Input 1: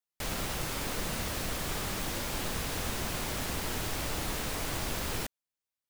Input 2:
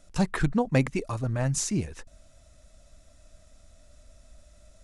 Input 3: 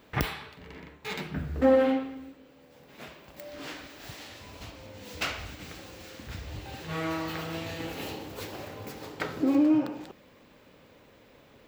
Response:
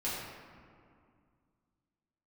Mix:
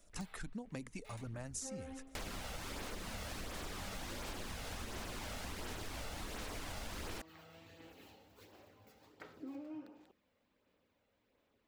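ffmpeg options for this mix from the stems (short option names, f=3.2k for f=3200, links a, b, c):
-filter_complex "[0:a]highshelf=f=12k:g=-12,adelay=1950,volume=1.5dB[a];[1:a]highshelf=f=5.8k:g=10,acrossover=split=310|3000[b][c][d];[c]acompressor=threshold=-31dB:ratio=6[e];[b][e][d]amix=inputs=3:normalize=0,volume=-8.5dB[f];[2:a]volume=-18dB[g];[a][f][g]amix=inputs=3:normalize=0,equalizer=f=140:w=5.4:g=-12.5,flanger=delay=0:depth=1.5:regen=-41:speed=1.4:shape=sinusoidal,acompressor=threshold=-41dB:ratio=6"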